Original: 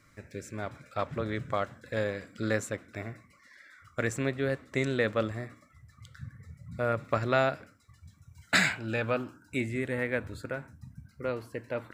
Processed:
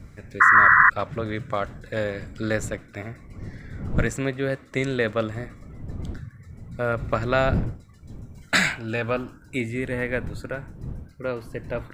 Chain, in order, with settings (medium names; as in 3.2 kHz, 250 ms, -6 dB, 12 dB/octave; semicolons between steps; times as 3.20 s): wind noise 140 Hz -39 dBFS; painted sound noise, 0.40–0.90 s, 1–2 kHz -18 dBFS; trim +4 dB